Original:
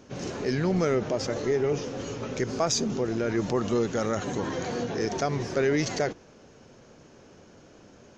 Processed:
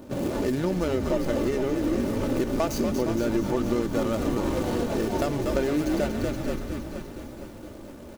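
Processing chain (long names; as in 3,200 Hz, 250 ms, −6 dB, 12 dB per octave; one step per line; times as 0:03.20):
running median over 25 samples
echo with shifted repeats 238 ms, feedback 57%, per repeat −93 Hz, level −7 dB
downward compressor, threshold −31 dBFS, peak gain reduction 10.5 dB
high-shelf EQ 7,000 Hz +8.5 dB
comb filter 3.4 ms, depth 41%
feedback echo at a low word length 464 ms, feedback 55%, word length 9 bits, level −10.5 dB
level +8 dB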